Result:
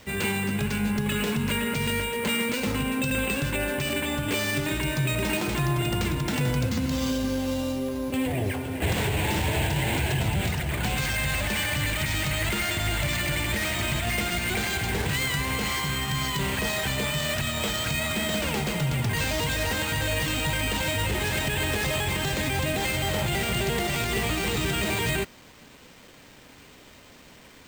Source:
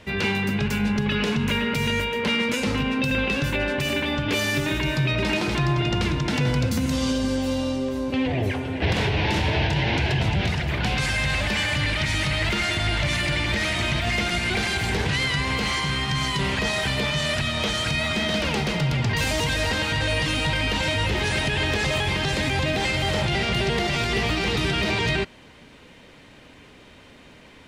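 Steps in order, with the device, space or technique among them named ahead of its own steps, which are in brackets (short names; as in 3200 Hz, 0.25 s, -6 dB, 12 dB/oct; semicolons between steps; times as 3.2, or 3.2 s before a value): early 8-bit sampler (sample-rate reducer 11000 Hz, jitter 0%; bit-crush 8-bit); gain -3 dB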